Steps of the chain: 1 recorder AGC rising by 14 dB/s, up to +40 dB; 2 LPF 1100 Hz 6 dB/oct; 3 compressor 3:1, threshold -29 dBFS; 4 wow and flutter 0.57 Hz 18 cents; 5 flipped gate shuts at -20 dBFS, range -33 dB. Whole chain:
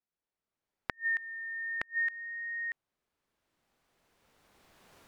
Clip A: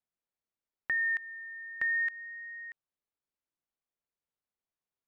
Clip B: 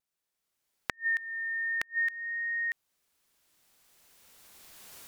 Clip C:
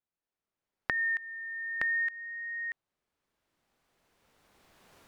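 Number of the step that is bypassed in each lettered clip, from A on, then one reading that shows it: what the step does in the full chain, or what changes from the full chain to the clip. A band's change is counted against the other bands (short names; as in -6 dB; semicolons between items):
1, crest factor change -11.5 dB; 2, momentary loudness spread change +1 LU; 5, loudness change +2.5 LU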